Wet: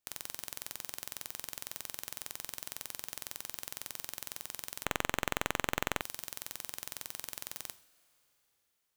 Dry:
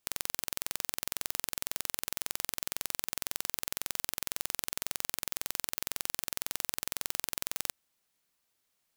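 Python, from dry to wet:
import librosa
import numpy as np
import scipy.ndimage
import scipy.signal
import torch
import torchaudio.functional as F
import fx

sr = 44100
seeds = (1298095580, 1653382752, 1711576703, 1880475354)

y = fx.rev_double_slope(x, sr, seeds[0], early_s=0.48, late_s=3.9, knee_db=-18, drr_db=11.5)
y = fx.running_max(y, sr, window=9, at=(4.84, 6.0), fade=0.02)
y = y * librosa.db_to_amplitude(-7.0)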